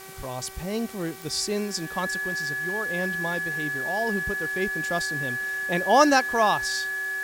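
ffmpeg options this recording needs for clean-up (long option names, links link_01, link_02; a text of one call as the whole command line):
ffmpeg -i in.wav -af "adeclick=threshold=4,bandreject=frequency=383.6:width_type=h:width=4,bandreject=frequency=767.2:width_type=h:width=4,bandreject=frequency=1150.8:width_type=h:width=4,bandreject=frequency=1534.4:width_type=h:width=4,bandreject=frequency=1918:width_type=h:width=4,bandreject=frequency=2301.6:width_type=h:width=4,bandreject=frequency=1700:width=30,afwtdn=0.0056" out.wav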